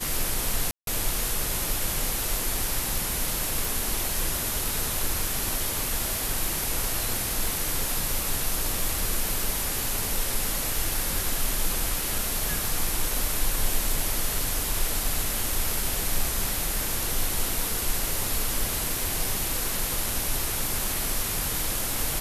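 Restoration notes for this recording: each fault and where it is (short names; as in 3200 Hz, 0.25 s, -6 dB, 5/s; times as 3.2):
0.71–0.87 gap 0.162 s
3.65 pop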